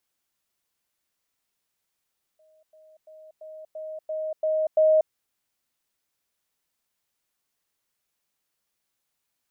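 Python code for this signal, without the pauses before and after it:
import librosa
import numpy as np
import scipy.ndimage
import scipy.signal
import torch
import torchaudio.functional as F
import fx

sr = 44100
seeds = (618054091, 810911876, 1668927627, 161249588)

y = fx.level_ladder(sr, hz=626.0, from_db=-57.0, step_db=6.0, steps=8, dwell_s=0.24, gap_s=0.1)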